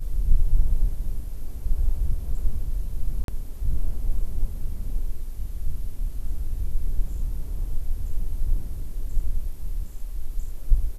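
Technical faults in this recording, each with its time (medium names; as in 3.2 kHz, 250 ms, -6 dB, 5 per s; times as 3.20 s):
3.24–3.28 s: dropout 42 ms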